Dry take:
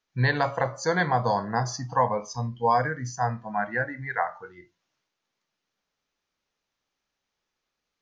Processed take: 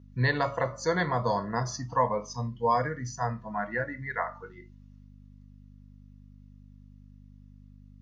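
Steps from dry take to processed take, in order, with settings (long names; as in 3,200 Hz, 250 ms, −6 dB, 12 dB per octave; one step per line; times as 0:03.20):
mains hum 50 Hz, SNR 17 dB
notch comb filter 790 Hz
level −1.5 dB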